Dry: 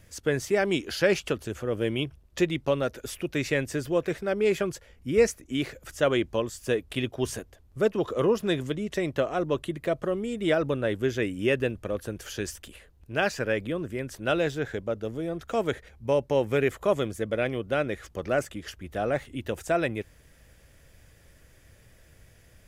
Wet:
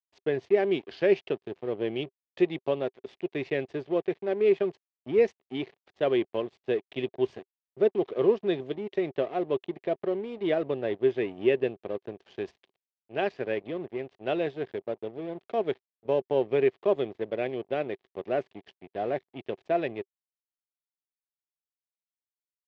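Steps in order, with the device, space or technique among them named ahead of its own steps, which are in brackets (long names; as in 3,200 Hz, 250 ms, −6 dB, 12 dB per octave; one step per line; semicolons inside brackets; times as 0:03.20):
blown loudspeaker (dead-zone distortion −39 dBFS; loudspeaker in its box 130–3,800 Hz, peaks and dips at 390 Hz +10 dB, 710 Hz +6 dB, 1,400 Hz −8 dB)
level −4.5 dB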